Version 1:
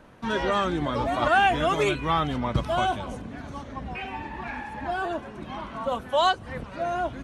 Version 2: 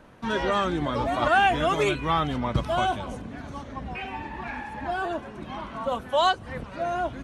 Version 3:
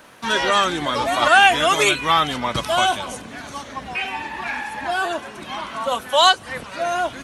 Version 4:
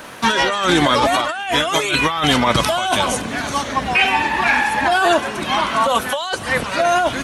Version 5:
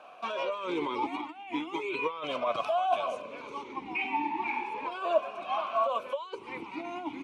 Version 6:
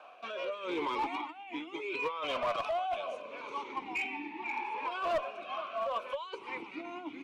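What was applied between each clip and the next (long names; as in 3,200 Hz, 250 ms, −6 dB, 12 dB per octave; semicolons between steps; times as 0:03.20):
no processing that can be heard
spectral tilt +3.5 dB per octave; level +7 dB
compressor whose output falls as the input rises −24 dBFS, ratio −1; level +7 dB
formant filter swept between two vowels a-u 0.36 Hz; level −4 dB
rotating-speaker cabinet horn 0.75 Hz; mid-hump overdrive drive 15 dB, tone 3,900 Hz, clips at −15 dBFS; asymmetric clip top −23 dBFS; level −6 dB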